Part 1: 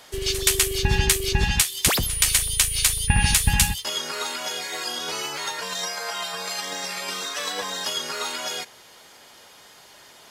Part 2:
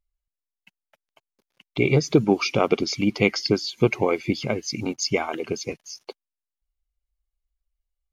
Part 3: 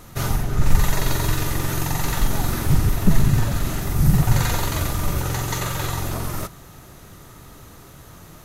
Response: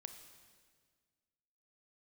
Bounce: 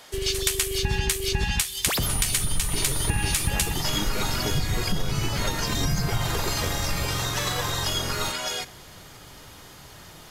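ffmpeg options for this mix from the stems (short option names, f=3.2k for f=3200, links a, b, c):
-filter_complex "[0:a]volume=-1.5dB,asplit=2[a][b];[b]volume=-7.5dB[c];[1:a]acompressor=threshold=-24dB:ratio=6,volume=20dB,asoftclip=hard,volume=-20dB,adelay=950,volume=-2.5dB[d];[2:a]adelay=1850,volume=-5dB[e];[3:a]atrim=start_sample=2205[f];[c][f]afir=irnorm=-1:irlink=0[g];[a][d][e][g]amix=inputs=4:normalize=0,acompressor=threshold=-20dB:ratio=6"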